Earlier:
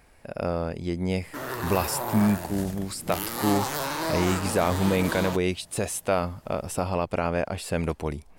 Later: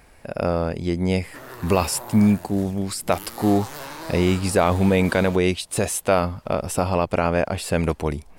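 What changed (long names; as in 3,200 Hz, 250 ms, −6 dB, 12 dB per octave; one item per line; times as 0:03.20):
speech +5.5 dB
background −6.5 dB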